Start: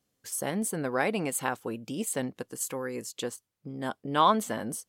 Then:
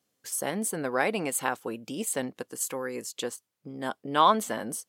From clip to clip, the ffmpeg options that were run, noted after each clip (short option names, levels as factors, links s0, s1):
-af "highpass=f=250:p=1,volume=1.26"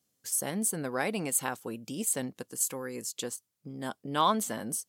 -af "bass=f=250:g=8,treble=f=4000:g=8,volume=0.531"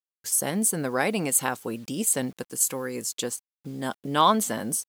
-af "acrusher=bits=9:mix=0:aa=0.000001,volume=2"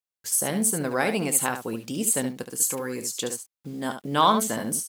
-af "aecho=1:1:27|71:0.141|0.376"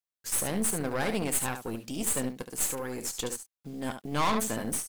-af "aeval=exprs='(tanh(14.1*val(0)+0.75)-tanh(0.75))/14.1':c=same"